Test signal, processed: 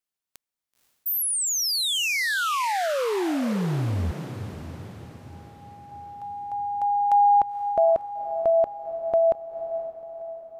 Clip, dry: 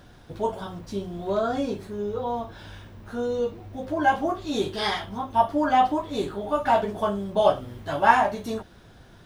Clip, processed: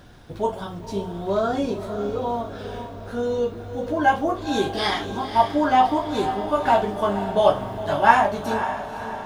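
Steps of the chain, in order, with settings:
feedback delay with all-pass diffusion 514 ms, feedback 53%, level −10 dB
level +2.5 dB

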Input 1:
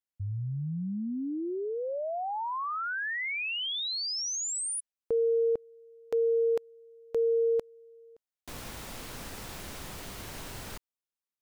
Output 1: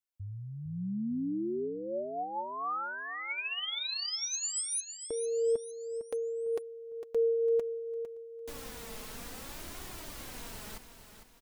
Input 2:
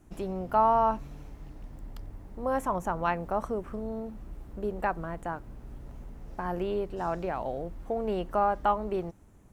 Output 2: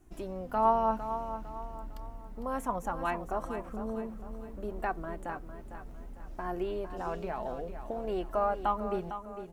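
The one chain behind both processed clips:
high-shelf EQ 8,100 Hz +4 dB
flanger 0.61 Hz, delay 2.6 ms, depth 2.2 ms, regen +34%
repeating echo 454 ms, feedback 41%, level −10 dB

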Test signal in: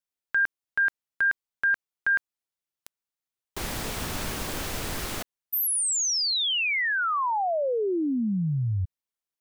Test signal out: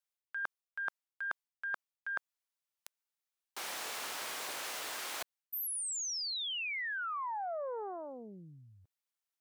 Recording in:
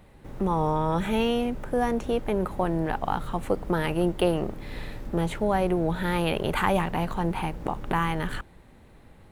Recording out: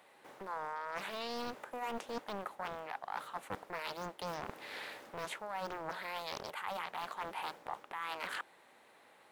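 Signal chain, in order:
high-pass filter 660 Hz 12 dB per octave
reversed playback
downward compressor 16 to 1, threshold −35 dBFS
reversed playback
highs frequency-modulated by the lows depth 0.87 ms
level −1 dB

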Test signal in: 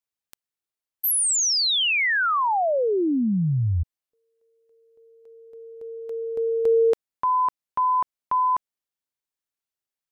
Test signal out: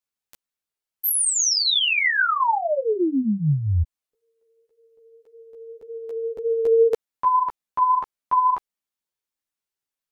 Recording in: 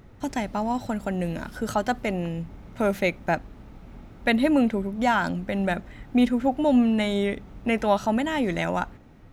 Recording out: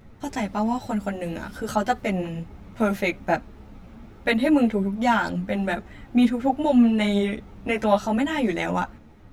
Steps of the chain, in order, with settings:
string-ensemble chorus
level +4 dB

